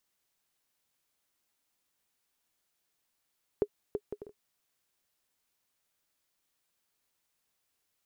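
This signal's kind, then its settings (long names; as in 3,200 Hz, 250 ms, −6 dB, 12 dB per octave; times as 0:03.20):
bouncing ball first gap 0.33 s, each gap 0.53, 414 Hz, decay 59 ms −16 dBFS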